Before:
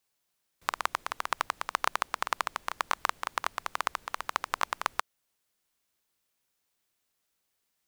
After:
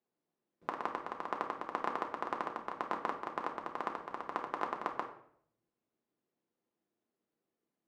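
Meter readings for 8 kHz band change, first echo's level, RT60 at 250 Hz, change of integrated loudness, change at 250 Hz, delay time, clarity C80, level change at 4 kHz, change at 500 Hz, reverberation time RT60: below −20 dB, no echo audible, 0.75 s, −6.5 dB, +7.5 dB, no echo audible, 12.5 dB, −17.0 dB, +2.0 dB, 0.65 s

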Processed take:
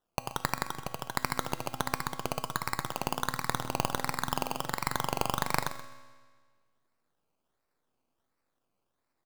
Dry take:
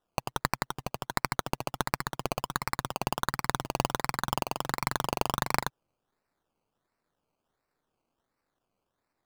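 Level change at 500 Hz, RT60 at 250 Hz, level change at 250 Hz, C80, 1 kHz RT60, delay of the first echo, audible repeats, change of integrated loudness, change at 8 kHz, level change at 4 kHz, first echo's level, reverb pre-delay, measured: −1.5 dB, 1.6 s, −1.0 dB, 11.5 dB, 1.6 s, 129 ms, 2, −1.0 dB, 0.0 dB, −1.0 dB, −14.5 dB, 4 ms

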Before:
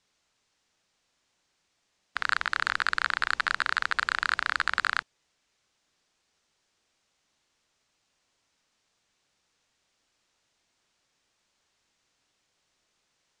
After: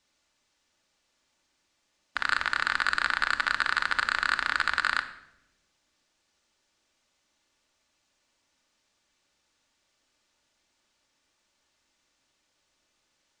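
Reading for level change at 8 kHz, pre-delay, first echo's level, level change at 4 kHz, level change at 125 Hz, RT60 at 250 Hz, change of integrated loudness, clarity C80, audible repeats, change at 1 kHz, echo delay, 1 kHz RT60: +1.0 dB, 3 ms, no echo audible, +1.0 dB, can't be measured, 1.4 s, +1.0 dB, 14.5 dB, no echo audible, +0.5 dB, no echo audible, 0.75 s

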